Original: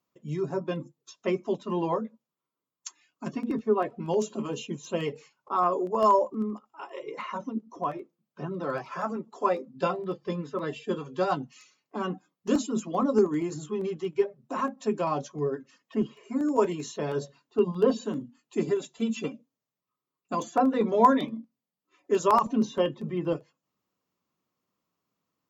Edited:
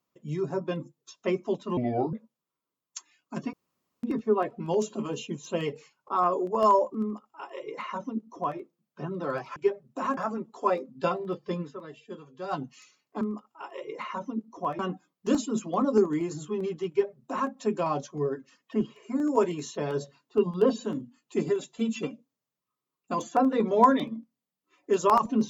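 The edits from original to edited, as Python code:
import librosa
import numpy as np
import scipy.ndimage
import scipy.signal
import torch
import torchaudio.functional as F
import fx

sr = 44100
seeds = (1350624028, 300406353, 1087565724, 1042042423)

y = fx.edit(x, sr, fx.speed_span(start_s=1.77, length_s=0.26, speed=0.72),
    fx.insert_room_tone(at_s=3.43, length_s=0.5),
    fx.duplicate(start_s=6.4, length_s=1.58, to_s=12.0),
    fx.fade_down_up(start_s=10.39, length_s=1.03, db=-11.5, fade_s=0.2),
    fx.duplicate(start_s=14.1, length_s=0.61, to_s=8.96), tone=tone)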